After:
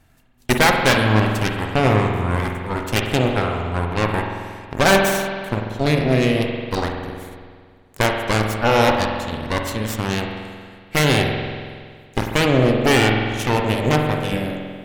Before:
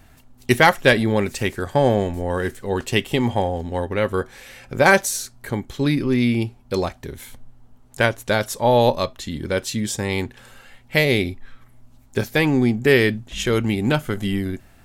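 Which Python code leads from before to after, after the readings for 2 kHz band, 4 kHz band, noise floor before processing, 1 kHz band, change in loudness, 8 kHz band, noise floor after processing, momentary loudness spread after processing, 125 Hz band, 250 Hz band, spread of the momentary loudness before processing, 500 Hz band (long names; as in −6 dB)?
+0.5 dB, +3.5 dB, −51 dBFS, +3.0 dB, +1.0 dB, +0.5 dB, −48 dBFS, 14 LU, +3.5 dB, +0.5 dB, 13 LU, 0.0 dB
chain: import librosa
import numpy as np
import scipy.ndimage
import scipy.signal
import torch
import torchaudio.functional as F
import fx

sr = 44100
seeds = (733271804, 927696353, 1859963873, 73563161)

y = fx.cheby_harmonics(x, sr, harmonics=(7, 8), levels_db=(-26, -11), full_scale_db=-2.0)
y = fx.rev_spring(y, sr, rt60_s=1.9, pass_ms=(46,), chirp_ms=25, drr_db=2.0)
y = y * 10.0 ** (-3.0 / 20.0)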